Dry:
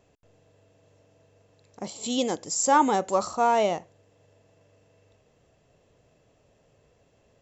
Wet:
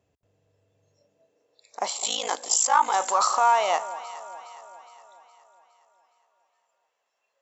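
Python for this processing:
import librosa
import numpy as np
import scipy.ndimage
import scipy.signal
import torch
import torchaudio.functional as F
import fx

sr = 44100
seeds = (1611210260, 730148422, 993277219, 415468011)

p1 = fx.noise_reduce_blind(x, sr, reduce_db=20)
p2 = fx.over_compress(p1, sr, threshold_db=-28.0, ratio=-0.5)
p3 = p1 + (p2 * librosa.db_to_amplitude(2.0))
p4 = fx.filter_sweep_highpass(p3, sr, from_hz=67.0, to_hz=1000.0, start_s=0.65, end_s=1.9, q=1.6)
p5 = fx.ring_mod(p4, sr, carrier_hz=27.0, at=(1.97, 2.94))
y = fx.echo_alternate(p5, sr, ms=207, hz=900.0, feedback_pct=71, wet_db=-13.0)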